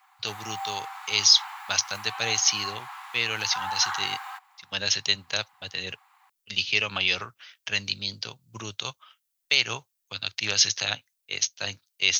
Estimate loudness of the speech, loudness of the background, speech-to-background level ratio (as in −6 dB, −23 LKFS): −25.5 LKFS, −36.5 LKFS, 11.0 dB